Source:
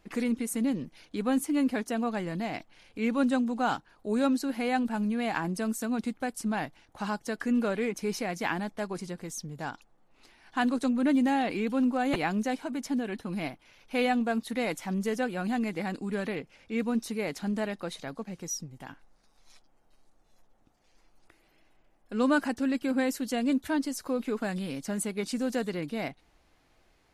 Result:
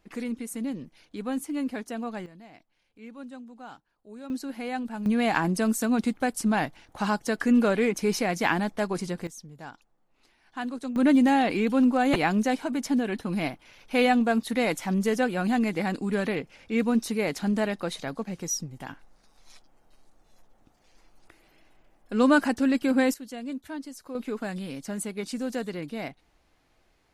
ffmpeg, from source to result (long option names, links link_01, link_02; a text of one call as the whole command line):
ffmpeg -i in.wav -af "asetnsamples=nb_out_samples=441:pad=0,asendcmd='2.26 volume volume -16dB;4.3 volume volume -4dB;5.06 volume volume 6dB;9.27 volume volume -6dB;10.96 volume volume 5dB;23.14 volume volume -8dB;24.15 volume volume -1dB',volume=-3.5dB" out.wav